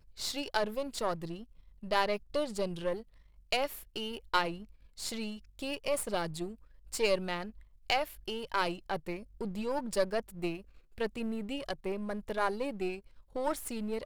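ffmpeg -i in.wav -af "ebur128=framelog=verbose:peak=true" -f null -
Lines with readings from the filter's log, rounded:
Integrated loudness:
  I:         -35.0 LUFS
  Threshold: -45.4 LUFS
Loudness range:
  LRA:         2.1 LU
  Threshold: -55.4 LUFS
  LRA low:   -36.5 LUFS
  LRA high:  -34.4 LUFS
True peak:
  Peak:      -11.9 dBFS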